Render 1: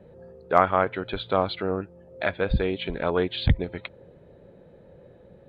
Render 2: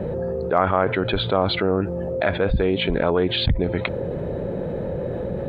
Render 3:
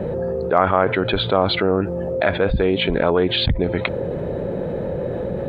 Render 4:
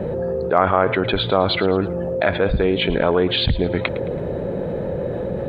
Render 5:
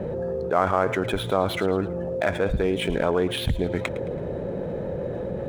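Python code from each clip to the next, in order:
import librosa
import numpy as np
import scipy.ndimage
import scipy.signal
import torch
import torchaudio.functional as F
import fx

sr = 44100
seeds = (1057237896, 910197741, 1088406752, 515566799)

y1 = fx.high_shelf(x, sr, hz=2000.0, db=-9.5)
y1 = fx.env_flatten(y1, sr, amount_pct=70)
y1 = y1 * librosa.db_to_amplitude(-1.5)
y2 = fx.low_shelf(y1, sr, hz=160.0, db=-3.5)
y2 = y2 * librosa.db_to_amplitude(3.0)
y3 = fx.echo_feedback(y2, sr, ms=109, feedback_pct=41, wet_db=-17.0)
y4 = scipy.ndimage.median_filter(y3, 9, mode='constant')
y4 = y4 * librosa.db_to_amplitude(-5.0)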